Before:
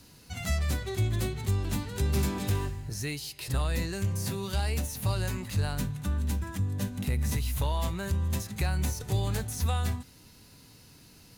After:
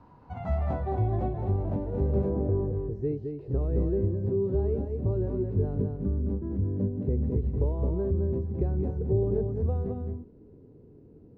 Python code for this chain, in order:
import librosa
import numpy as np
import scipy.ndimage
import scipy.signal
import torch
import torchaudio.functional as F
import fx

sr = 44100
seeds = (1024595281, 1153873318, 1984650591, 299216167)

y = x + 10.0 ** (-5.0 / 20.0) * np.pad(x, (int(214 * sr / 1000.0), 0))[:len(x)]
y = fx.filter_sweep_lowpass(y, sr, from_hz=970.0, to_hz=410.0, start_s=0.1, end_s=3.22, q=4.2)
y = fx.lowpass(y, sr, hz=1600.0, slope=12, at=(2.29, 2.72), fade=0.02)